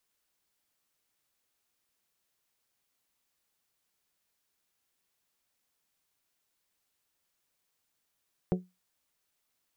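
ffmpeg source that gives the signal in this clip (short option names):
-f lavfi -i "aevalsrc='0.0794*pow(10,-3*t/0.23)*sin(2*PI*182*t)+0.0531*pow(10,-3*t/0.142)*sin(2*PI*364*t)+0.0355*pow(10,-3*t/0.125)*sin(2*PI*436.8*t)+0.0237*pow(10,-3*t/0.107)*sin(2*PI*546*t)+0.0158*pow(10,-3*t/0.087)*sin(2*PI*728*t)':d=0.89:s=44100"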